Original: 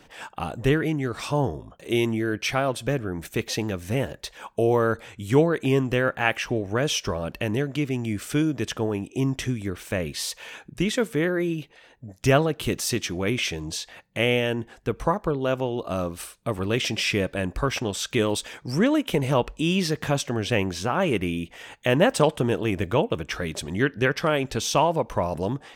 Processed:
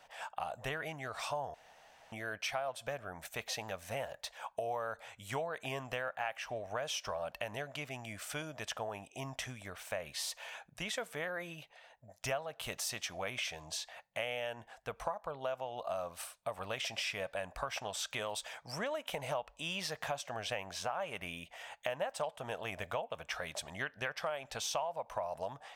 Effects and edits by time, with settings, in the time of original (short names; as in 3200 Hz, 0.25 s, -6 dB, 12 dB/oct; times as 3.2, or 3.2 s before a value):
1.54–2.12 room tone
whole clip: resonant low shelf 480 Hz -11 dB, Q 3; compressor 5:1, threshold -27 dBFS; gain -7.5 dB